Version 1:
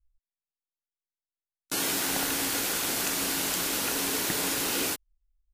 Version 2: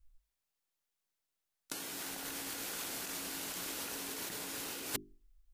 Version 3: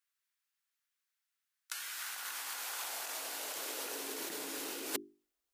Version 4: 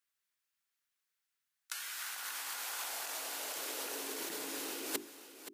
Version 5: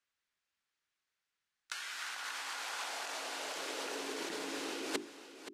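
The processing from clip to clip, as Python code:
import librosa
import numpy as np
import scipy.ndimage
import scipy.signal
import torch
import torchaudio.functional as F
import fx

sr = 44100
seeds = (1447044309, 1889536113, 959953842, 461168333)

y1 = fx.hum_notches(x, sr, base_hz=50, count=8)
y1 = fx.over_compress(y1, sr, threshold_db=-36.0, ratio=-0.5)
y1 = F.gain(torch.from_numpy(y1), -2.5).numpy()
y2 = fx.filter_sweep_highpass(y1, sr, from_hz=1500.0, to_hz=330.0, start_s=1.84, end_s=4.28, q=1.7)
y3 = y2 + 10.0 ** (-12.5 / 20.0) * np.pad(y2, (int(525 * sr / 1000.0), 0))[:len(y2)]
y4 = fx.air_absorb(y3, sr, metres=80.0)
y4 = F.gain(torch.from_numpy(y4), 3.5).numpy()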